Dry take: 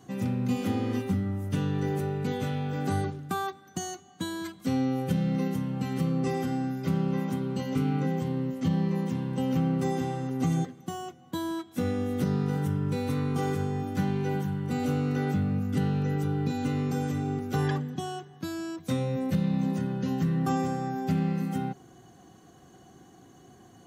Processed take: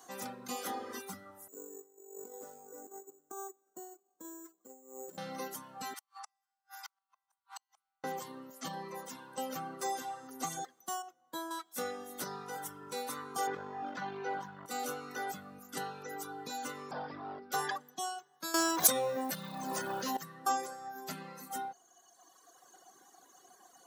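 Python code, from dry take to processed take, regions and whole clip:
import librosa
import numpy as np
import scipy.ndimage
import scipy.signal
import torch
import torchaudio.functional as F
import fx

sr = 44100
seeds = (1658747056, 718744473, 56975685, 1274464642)

y = fx.chain(x, sr, fx.bandpass_q(hz=380.0, q=3.3),
    fx.over_compress(threshold_db=-38.0, ratio=-0.5),
    fx.resample_bad(factor=6, down='none', up='hold'), at=(1.48, 5.18))
y = fx.chain(y, sr, fx.brickwall_highpass(low_hz=770.0),
    fx.gate_flip(shuts_db=-35.0, range_db=-37), at=(5.94, 8.04))
y = fx.chain(y, sr, fx.high_shelf(hz=2100.0, db=-7.0),
    fx.notch_comb(f0_hz=200.0), at=(11.02, 11.51))
y = fx.chain(y, sr, fx.law_mismatch(coded='A'),
    fx.air_absorb(metres=220.0),
    fx.env_flatten(amount_pct=70), at=(13.47, 14.66))
y = fx.chain(y, sr, fx.bass_treble(bass_db=7, treble_db=-12),
    fx.clip_hard(threshold_db=-22.0),
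    fx.resample_bad(factor=4, down='none', up='filtered'), at=(16.91, 17.52))
y = fx.chain(y, sr, fx.law_mismatch(coded='mu'),
    fx.env_flatten(amount_pct=100), at=(18.54, 20.17))
y = scipy.signal.sosfilt(scipy.signal.butter(2, 1000.0, 'highpass', fs=sr, output='sos'), y)
y = fx.dereverb_blind(y, sr, rt60_s=1.8)
y = fx.peak_eq(y, sr, hz=2500.0, db=-13.0, octaves=1.3)
y = y * 10.0 ** (8.5 / 20.0)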